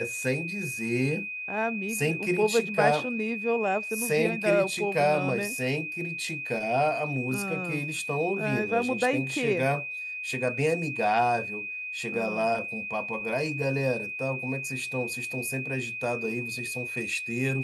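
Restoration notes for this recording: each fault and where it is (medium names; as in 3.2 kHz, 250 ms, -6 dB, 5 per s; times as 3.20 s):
whine 2.5 kHz -33 dBFS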